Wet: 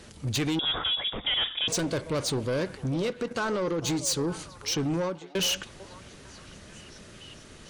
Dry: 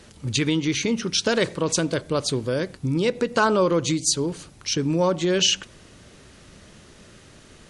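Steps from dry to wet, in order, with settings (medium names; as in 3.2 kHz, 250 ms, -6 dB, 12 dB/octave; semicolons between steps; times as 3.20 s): 2.84–3.84 s: level held to a coarse grid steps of 12 dB; 4.95–5.35 s: fade out quadratic; saturation -23.5 dBFS, distortion -10 dB; repeats whose band climbs or falls 448 ms, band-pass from 660 Hz, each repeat 0.7 oct, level -11 dB; 0.59–1.68 s: frequency inversion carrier 3.6 kHz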